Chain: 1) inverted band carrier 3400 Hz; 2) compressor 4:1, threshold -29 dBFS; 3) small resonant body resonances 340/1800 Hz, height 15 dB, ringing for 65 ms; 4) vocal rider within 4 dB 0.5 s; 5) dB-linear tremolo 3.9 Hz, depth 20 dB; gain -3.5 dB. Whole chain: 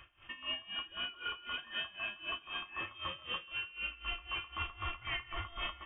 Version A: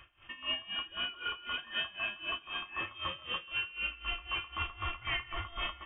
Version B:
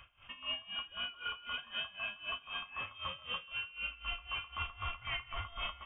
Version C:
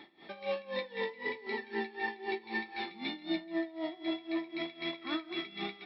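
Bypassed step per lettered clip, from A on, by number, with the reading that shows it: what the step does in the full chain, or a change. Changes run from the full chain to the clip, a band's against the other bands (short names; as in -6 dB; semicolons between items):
2, mean gain reduction 2.5 dB; 3, 250 Hz band -5.0 dB; 1, 250 Hz band +19.0 dB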